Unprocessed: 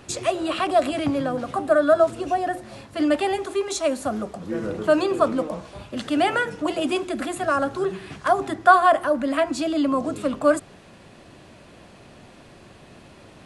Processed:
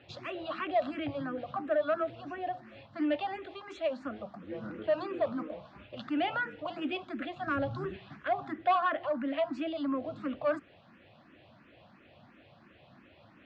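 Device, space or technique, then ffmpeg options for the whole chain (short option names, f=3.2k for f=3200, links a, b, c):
barber-pole phaser into a guitar amplifier: -filter_complex "[0:a]asettb=1/sr,asplit=3[a][b][c];[a]atrim=end=7.474[d];[b]atrim=start=7.47:end=7.96,asetpts=PTS-STARTPTS,afade=t=in:d=0.004:c=qsin,afade=t=out:st=0.486:d=0.004:c=qsin,bass=f=250:g=15,treble=f=4k:g=7[e];[c]atrim=start=7.956[f];[d][e]acrossfade=d=0.004:c1=hsin:c2=qsin[g];[g][f]acrossfade=d=0.004:c1=qsin:c2=hsin,asplit=2[h][i];[i]afreqshift=2.9[j];[h][j]amix=inputs=2:normalize=1,asoftclip=type=tanh:threshold=-13dB,highpass=93,equalizer=f=170:t=q:w=4:g=-4,equalizer=f=410:t=q:w=4:g=-9,equalizer=f=970:t=q:w=4:g=-3,lowpass=f=3.6k:w=0.5412,lowpass=f=3.6k:w=1.3066,volume=-6dB"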